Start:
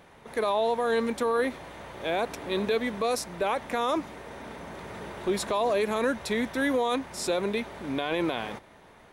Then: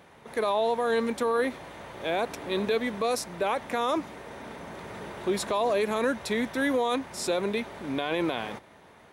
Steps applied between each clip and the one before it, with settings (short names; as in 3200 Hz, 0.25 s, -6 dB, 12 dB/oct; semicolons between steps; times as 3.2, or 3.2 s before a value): HPF 67 Hz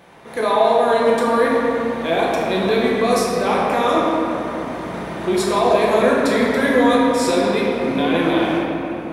shoebox room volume 180 m³, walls hard, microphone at 0.81 m; gain +4.5 dB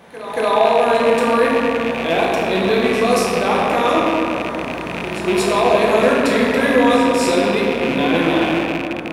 rattling part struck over -30 dBFS, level -15 dBFS; pre-echo 0.231 s -13 dB; gain +1 dB